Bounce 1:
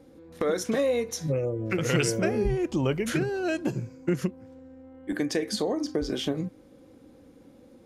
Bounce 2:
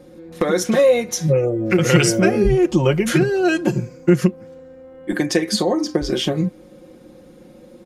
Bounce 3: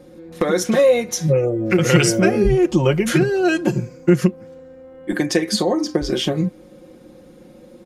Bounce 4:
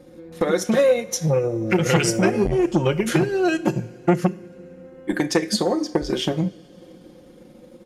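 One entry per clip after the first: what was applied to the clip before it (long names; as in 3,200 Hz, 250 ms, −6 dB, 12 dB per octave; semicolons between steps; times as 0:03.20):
comb filter 5.6 ms, depth 69%; level +8 dB
no processing that can be heard
transient designer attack +3 dB, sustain −5 dB; coupled-rooms reverb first 0.54 s, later 4 s, from −18 dB, DRR 13.5 dB; saturating transformer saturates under 650 Hz; level −2.5 dB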